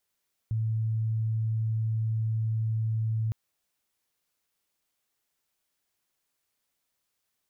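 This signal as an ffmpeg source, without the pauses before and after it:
ffmpeg -f lavfi -i "aevalsrc='0.0562*sin(2*PI*111*t)':duration=2.81:sample_rate=44100" out.wav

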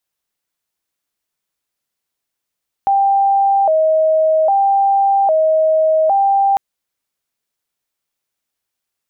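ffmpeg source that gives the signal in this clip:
ffmpeg -f lavfi -i "aevalsrc='0.316*sin(2*PI*(711*t+79/0.62*(0.5-abs(mod(0.62*t,1)-0.5))))':duration=3.7:sample_rate=44100" out.wav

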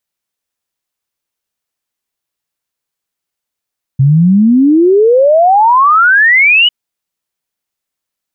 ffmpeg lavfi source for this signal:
ffmpeg -f lavfi -i "aevalsrc='0.631*clip(min(t,2.7-t)/0.01,0,1)*sin(2*PI*130*2.7/log(3000/130)*(exp(log(3000/130)*t/2.7)-1))':duration=2.7:sample_rate=44100" out.wav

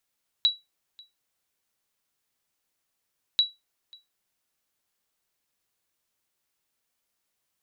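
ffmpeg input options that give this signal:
ffmpeg -f lavfi -i "aevalsrc='0.224*(sin(2*PI*3910*mod(t,2.94))*exp(-6.91*mod(t,2.94)/0.2)+0.0447*sin(2*PI*3910*max(mod(t,2.94)-0.54,0))*exp(-6.91*max(mod(t,2.94)-0.54,0)/0.2))':duration=5.88:sample_rate=44100" out.wav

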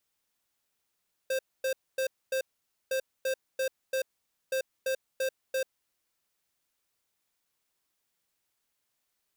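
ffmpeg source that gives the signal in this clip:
ffmpeg -f lavfi -i "aevalsrc='0.0355*(2*lt(mod(527*t,1),0.5)-1)*clip(min(mod(mod(t,1.61),0.34),0.09-mod(mod(t,1.61),0.34))/0.005,0,1)*lt(mod(t,1.61),1.36)':duration=4.83:sample_rate=44100" out.wav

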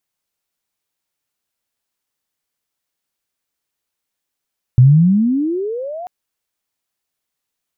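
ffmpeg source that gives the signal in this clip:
ffmpeg -f lavfi -i "aevalsrc='pow(10,(-3.5-22*t/1.29)/20)*sin(2*PI*120*1.29/log(740/120)*(exp(log(740/120)*t/1.29)-1))':duration=1.29:sample_rate=44100" out.wav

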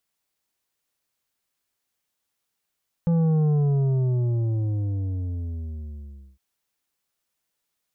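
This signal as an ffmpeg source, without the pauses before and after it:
ffmpeg -f lavfi -i "aevalsrc='0.119*clip((3.31-t)/2.91,0,1)*tanh(2.51*sin(2*PI*170*3.31/log(65/170)*(exp(log(65/170)*t/3.31)-1)))/tanh(2.51)':duration=3.31:sample_rate=44100" out.wav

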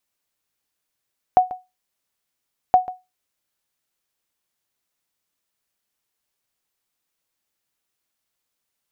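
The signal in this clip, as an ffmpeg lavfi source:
ffmpeg -f lavfi -i "aevalsrc='0.562*(sin(2*PI*737*mod(t,1.37))*exp(-6.91*mod(t,1.37)/0.22)+0.133*sin(2*PI*737*max(mod(t,1.37)-0.14,0))*exp(-6.91*max(mod(t,1.37)-0.14,0)/0.22))':duration=2.74:sample_rate=44100" out.wav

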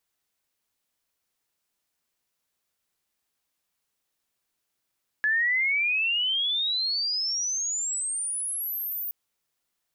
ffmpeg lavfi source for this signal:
ffmpeg -f lavfi -i "aevalsrc='pow(10,(-20.5-8.5*t/3.87)/20)*sin(2*PI*1700*3.87/log(15000/1700)*(exp(log(15000/1700)*t/3.87)-1))':duration=3.87:sample_rate=44100" out.wav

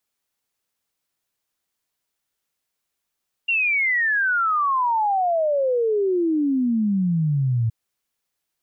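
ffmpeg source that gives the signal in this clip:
ffmpeg -f lavfi -i "aevalsrc='0.133*clip(min(t,4.22-t)/0.01,0,1)*sin(2*PI*2800*4.22/log(110/2800)*(exp(log(110/2800)*t/4.22)-1))':duration=4.22:sample_rate=44100" out.wav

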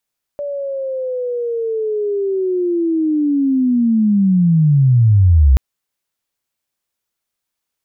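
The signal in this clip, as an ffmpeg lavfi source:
ffmpeg -f lavfi -i "aevalsrc='pow(10,(-20.5+14.5*t/5.18)/20)*sin(2*PI*(580*t-519*t*t/(2*5.18)))':duration=5.18:sample_rate=44100" out.wav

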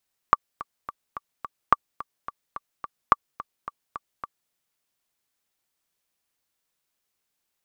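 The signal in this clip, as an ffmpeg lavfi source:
ffmpeg -f lavfi -i "aevalsrc='pow(10,(-1.5-18*gte(mod(t,5*60/215),60/215))/20)*sin(2*PI*1160*mod(t,60/215))*exp(-6.91*mod(t,60/215)/0.03)':duration=4.18:sample_rate=44100" out.wav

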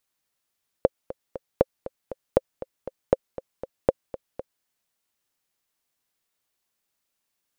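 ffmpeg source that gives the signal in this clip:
ffmpeg -f lavfi -i "aevalsrc='pow(10,(-3-16*gte(mod(t,3*60/237),60/237))/20)*sin(2*PI*528*mod(t,60/237))*exp(-6.91*mod(t,60/237)/0.03)':duration=3.79:sample_rate=44100" out.wav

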